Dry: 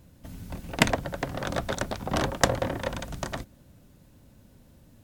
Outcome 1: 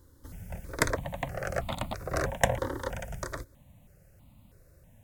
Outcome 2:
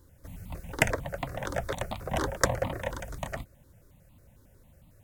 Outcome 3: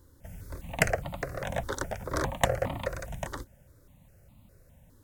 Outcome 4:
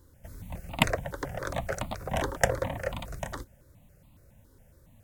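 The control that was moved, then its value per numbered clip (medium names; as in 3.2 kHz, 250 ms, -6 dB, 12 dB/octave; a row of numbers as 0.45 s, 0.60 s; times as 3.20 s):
stepped phaser, rate: 3.1 Hz, 11 Hz, 4.9 Hz, 7.2 Hz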